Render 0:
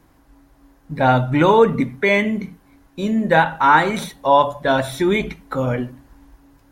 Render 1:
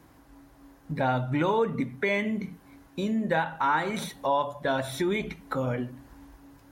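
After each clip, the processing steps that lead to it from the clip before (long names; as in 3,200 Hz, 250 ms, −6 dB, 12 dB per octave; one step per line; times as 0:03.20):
high-pass filter 58 Hz
downward compressor 2 to 1, threshold −32 dBFS, peak gain reduction 13 dB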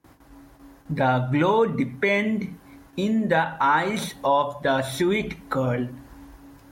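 noise gate with hold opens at −46 dBFS
level +5 dB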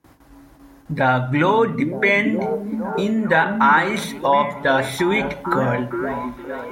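dynamic equaliser 1,700 Hz, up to +6 dB, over −37 dBFS, Q 1
echo through a band-pass that steps 460 ms, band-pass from 240 Hz, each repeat 0.7 octaves, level −3 dB
level +2 dB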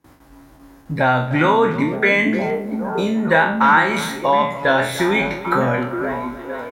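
peak hold with a decay on every bin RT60 0.44 s
far-end echo of a speakerphone 300 ms, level −14 dB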